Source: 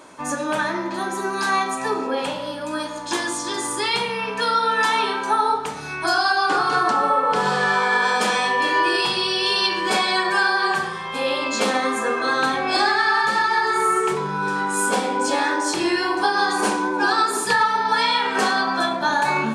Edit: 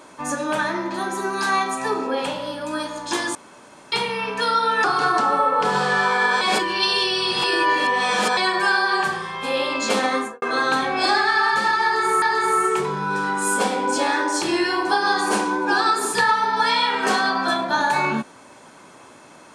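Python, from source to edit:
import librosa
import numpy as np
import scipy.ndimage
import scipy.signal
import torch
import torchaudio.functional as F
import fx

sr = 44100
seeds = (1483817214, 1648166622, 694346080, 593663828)

y = fx.studio_fade_out(x, sr, start_s=11.87, length_s=0.26)
y = fx.edit(y, sr, fx.room_tone_fill(start_s=3.35, length_s=0.57),
    fx.cut(start_s=4.84, length_s=1.71),
    fx.reverse_span(start_s=8.12, length_s=1.96),
    fx.repeat(start_s=13.54, length_s=0.39, count=2), tone=tone)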